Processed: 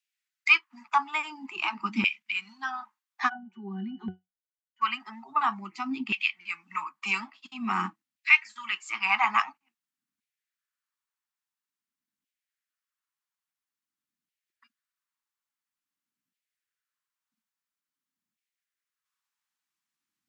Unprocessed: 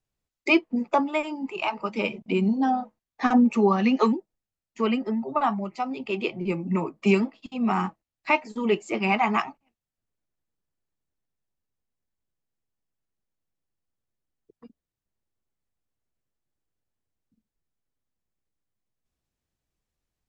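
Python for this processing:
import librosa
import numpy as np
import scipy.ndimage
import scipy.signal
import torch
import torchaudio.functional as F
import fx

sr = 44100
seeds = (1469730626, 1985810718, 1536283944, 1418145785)

y = scipy.signal.sosfilt(scipy.signal.cheby1(2, 1.0, [220.0, 1200.0], 'bandstop', fs=sr, output='sos'), x)
y = fx.filter_lfo_highpass(y, sr, shape='saw_down', hz=0.49, low_hz=240.0, high_hz=2500.0, q=2.0)
y = fx.octave_resonator(y, sr, note='F#', decay_s=0.17, at=(3.28, 4.81), fade=0.02)
y = y * librosa.db_to_amplitude(1.5)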